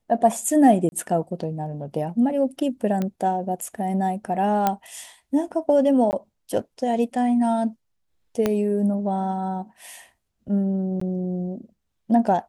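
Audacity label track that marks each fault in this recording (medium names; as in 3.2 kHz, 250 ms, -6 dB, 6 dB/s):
0.890000	0.920000	dropout 31 ms
3.020000	3.020000	pop -14 dBFS
4.670000	4.670000	pop -7 dBFS
6.110000	6.130000	dropout 19 ms
8.460000	8.460000	pop -8 dBFS
11.000000	11.010000	dropout 14 ms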